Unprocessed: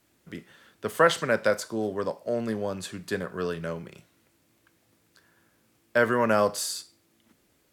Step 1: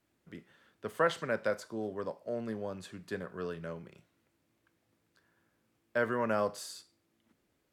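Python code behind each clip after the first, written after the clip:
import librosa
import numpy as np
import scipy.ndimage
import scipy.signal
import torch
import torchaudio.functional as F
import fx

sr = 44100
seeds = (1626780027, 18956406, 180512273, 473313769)

y = fx.high_shelf(x, sr, hz=4000.0, db=-7.5)
y = y * 10.0 ** (-8.0 / 20.0)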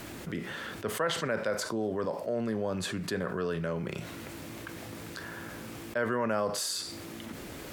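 y = fx.env_flatten(x, sr, amount_pct=70)
y = y * 10.0 ** (-3.0 / 20.0)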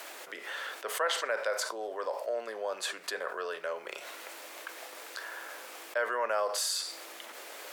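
y = scipy.signal.sosfilt(scipy.signal.butter(4, 520.0, 'highpass', fs=sr, output='sos'), x)
y = y * 10.0 ** (1.5 / 20.0)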